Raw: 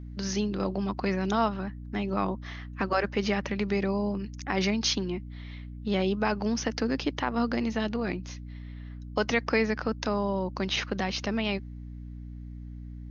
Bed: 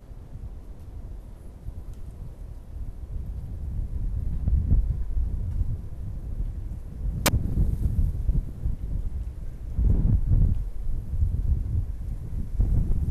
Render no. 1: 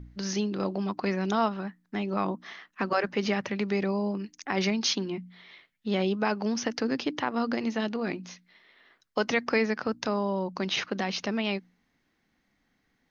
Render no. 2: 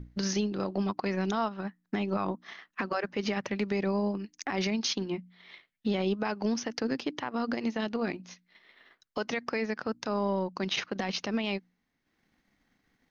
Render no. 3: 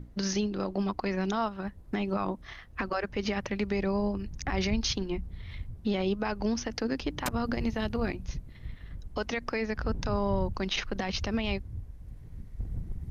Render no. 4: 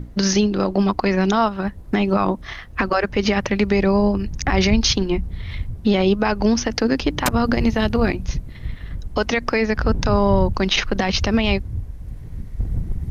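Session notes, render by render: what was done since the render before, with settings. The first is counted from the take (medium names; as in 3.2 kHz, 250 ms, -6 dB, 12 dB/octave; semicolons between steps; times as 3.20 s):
de-hum 60 Hz, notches 5
transient shaper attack +8 dB, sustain -7 dB; peak limiter -20 dBFS, peak gain reduction 15 dB
add bed -12.5 dB
trim +12 dB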